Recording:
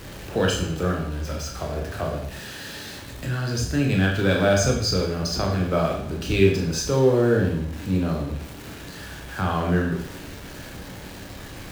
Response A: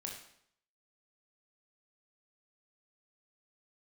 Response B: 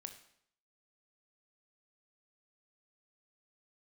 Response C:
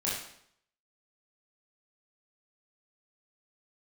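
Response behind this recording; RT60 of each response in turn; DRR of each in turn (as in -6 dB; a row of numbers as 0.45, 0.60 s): A; 0.70, 0.70, 0.70 s; -0.5, 6.5, -7.5 dB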